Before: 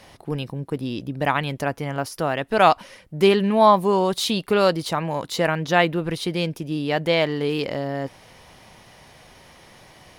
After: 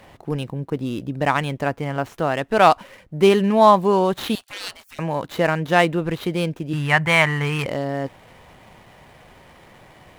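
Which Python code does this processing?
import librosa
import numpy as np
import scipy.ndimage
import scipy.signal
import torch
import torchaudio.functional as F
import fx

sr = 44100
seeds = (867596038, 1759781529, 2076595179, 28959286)

y = scipy.signal.medfilt(x, 9)
y = fx.spec_gate(y, sr, threshold_db=-25, keep='weak', at=(4.35, 4.99))
y = fx.graphic_eq(y, sr, hz=(125, 250, 500, 1000, 2000, 4000, 8000), db=(12, -9, -9, 9, 11, -4, 4), at=(6.73, 7.66))
y = F.gain(torch.from_numpy(y), 2.0).numpy()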